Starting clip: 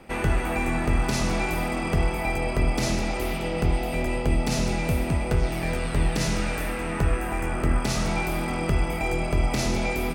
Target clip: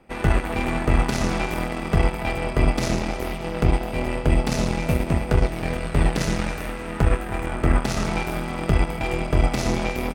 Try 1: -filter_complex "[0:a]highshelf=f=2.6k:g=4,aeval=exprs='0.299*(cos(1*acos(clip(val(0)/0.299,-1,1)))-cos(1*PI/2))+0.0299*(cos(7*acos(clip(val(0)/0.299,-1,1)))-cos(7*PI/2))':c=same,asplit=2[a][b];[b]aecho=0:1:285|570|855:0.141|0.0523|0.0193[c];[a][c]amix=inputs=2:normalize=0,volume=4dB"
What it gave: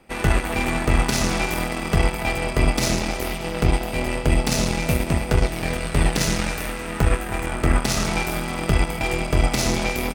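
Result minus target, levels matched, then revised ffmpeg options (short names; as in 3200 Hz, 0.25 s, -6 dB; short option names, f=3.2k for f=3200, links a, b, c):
4000 Hz band +5.0 dB
-filter_complex "[0:a]highshelf=f=2.6k:g=-5,aeval=exprs='0.299*(cos(1*acos(clip(val(0)/0.299,-1,1)))-cos(1*PI/2))+0.0299*(cos(7*acos(clip(val(0)/0.299,-1,1)))-cos(7*PI/2))':c=same,asplit=2[a][b];[b]aecho=0:1:285|570|855:0.141|0.0523|0.0193[c];[a][c]amix=inputs=2:normalize=0,volume=4dB"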